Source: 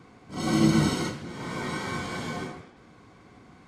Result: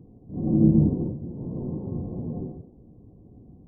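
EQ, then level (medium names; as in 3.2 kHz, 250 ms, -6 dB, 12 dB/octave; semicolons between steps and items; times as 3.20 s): Gaussian low-pass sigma 17 samples; bass shelf 88 Hz +9 dB; +3.5 dB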